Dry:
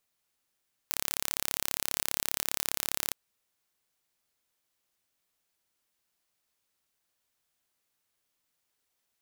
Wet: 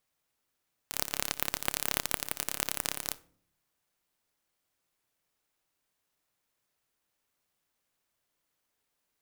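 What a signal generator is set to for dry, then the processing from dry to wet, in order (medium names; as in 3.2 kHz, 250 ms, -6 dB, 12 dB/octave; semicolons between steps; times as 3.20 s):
pulse train 34.9 per s, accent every 0, -2.5 dBFS 2.22 s
simulated room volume 670 m³, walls furnished, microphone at 0.43 m; sampling jitter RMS 0.069 ms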